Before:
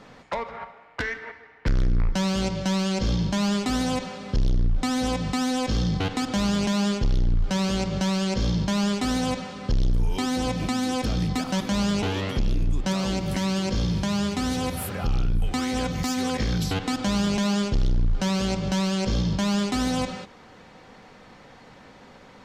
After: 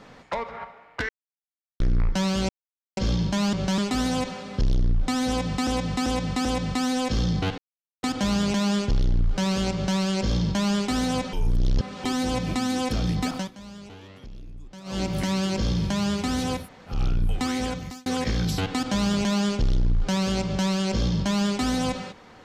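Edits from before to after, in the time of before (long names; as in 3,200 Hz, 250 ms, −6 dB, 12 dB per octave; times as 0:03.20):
0:01.09–0:01.80: silence
0:02.49–0:02.97: silence
0:05.03–0:05.42: repeat, 4 plays
0:06.16: splice in silence 0.45 s
0:07.86–0:08.11: duplicate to 0:03.53
0:09.46–0:10.17: reverse
0:11.46–0:13.15: duck −18 dB, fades 0.18 s
0:14.74–0:15.06: fill with room tone, crossfade 0.16 s
0:15.70–0:16.19: fade out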